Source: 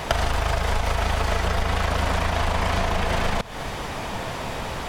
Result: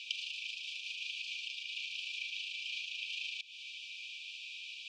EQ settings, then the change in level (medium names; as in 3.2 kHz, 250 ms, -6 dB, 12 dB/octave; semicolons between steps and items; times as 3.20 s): brick-wall FIR high-pass 2.3 kHz; distance through air 160 m; tilt EQ -2 dB/octave; +1.0 dB